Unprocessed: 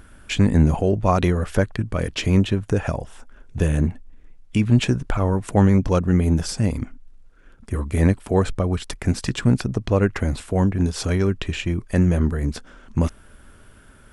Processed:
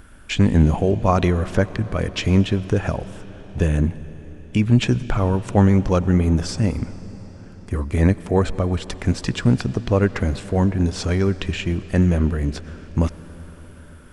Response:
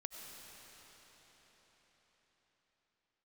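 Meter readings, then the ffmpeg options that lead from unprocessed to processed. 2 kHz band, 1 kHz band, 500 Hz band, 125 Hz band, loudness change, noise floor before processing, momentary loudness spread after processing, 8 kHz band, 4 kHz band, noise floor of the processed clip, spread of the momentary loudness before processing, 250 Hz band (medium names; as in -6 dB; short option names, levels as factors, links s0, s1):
+1.0 dB, +1.0 dB, +1.0 dB, +1.0 dB, +1.0 dB, -48 dBFS, 13 LU, -1.5 dB, +1.0 dB, -42 dBFS, 8 LU, +1.0 dB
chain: -filter_complex "[0:a]acrossover=split=8400[s0][s1];[s1]acompressor=threshold=0.00112:ratio=4:attack=1:release=60[s2];[s0][s2]amix=inputs=2:normalize=0,asplit=2[s3][s4];[1:a]atrim=start_sample=2205[s5];[s4][s5]afir=irnorm=-1:irlink=0,volume=0.422[s6];[s3][s6]amix=inputs=2:normalize=0,volume=0.891"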